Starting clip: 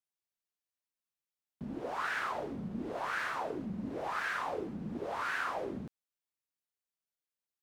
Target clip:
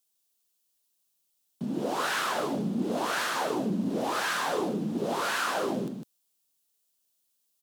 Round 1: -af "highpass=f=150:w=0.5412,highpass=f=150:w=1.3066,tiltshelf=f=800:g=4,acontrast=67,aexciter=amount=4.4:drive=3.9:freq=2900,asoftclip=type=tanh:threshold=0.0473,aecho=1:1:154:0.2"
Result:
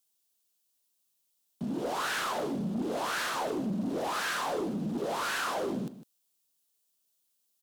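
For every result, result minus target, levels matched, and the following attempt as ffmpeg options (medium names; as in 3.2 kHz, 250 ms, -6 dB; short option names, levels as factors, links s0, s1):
saturation: distortion +12 dB; echo-to-direct -8.5 dB
-af "highpass=f=150:w=0.5412,highpass=f=150:w=1.3066,tiltshelf=f=800:g=4,acontrast=67,aexciter=amount=4.4:drive=3.9:freq=2900,asoftclip=type=tanh:threshold=0.119,aecho=1:1:154:0.2"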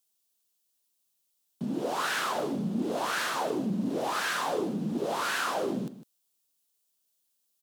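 echo-to-direct -8.5 dB
-af "highpass=f=150:w=0.5412,highpass=f=150:w=1.3066,tiltshelf=f=800:g=4,acontrast=67,aexciter=amount=4.4:drive=3.9:freq=2900,asoftclip=type=tanh:threshold=0.119,aecho=1:1:154:0.531"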